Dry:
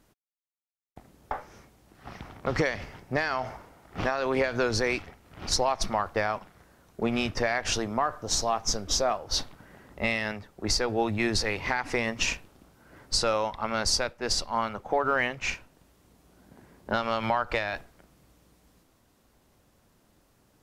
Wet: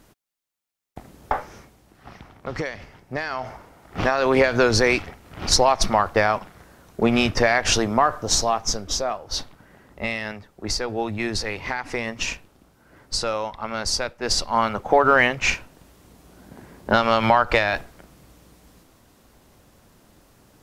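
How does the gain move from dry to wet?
1.38 s +9.5 dB
2.29 s -2.5 dB
2.98 s -2.5 dB
4.26 s +8.5 dB
8.18 s +8.5 dB
9.02 s +0.5 dB
13.83 s +0.5 dB
14.78 s +9.5 dB

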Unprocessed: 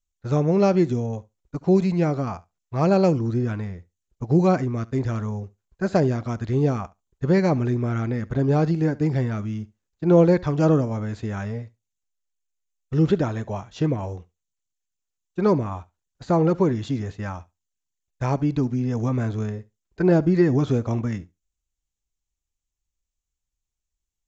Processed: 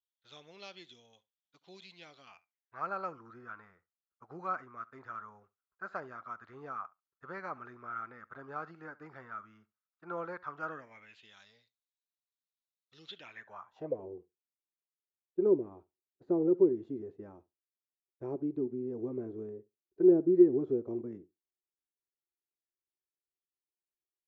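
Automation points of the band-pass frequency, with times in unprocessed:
band-pass, Q 6.8
2.19 s 3400 Hz
2.87 s 1300 Hz
10.59 s 1300 Hz
11.41 s 3900 Hz
13.07 s 3900 Hz
13.7 s 1000 Hz
14.05 s 370 Hz

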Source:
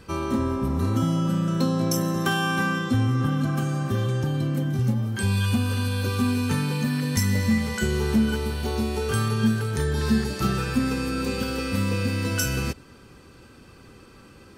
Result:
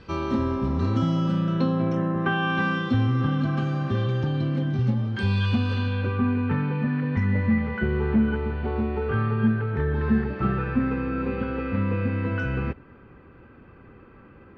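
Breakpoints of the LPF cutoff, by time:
LPF 24 dB/oct
1.28 s 4800 Hz
2.14 s 2100 Hz
2.68 s 4200 Hz
5.73 s 4200 Hz
6.2 s 2200 Hz

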